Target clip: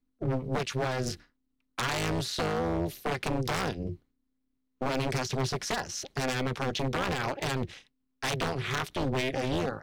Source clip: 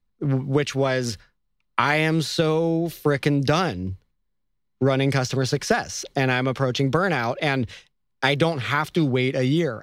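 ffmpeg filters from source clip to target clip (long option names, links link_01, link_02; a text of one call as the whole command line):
ffmpeg -i in.wav -af "aeval=exprs='0.126*(abs(mod(val(0)/0.126+3,4)-2)-1)':channel_layout=same,tremolo=f=260:d=0.974,volume=-1.5dB" out.wav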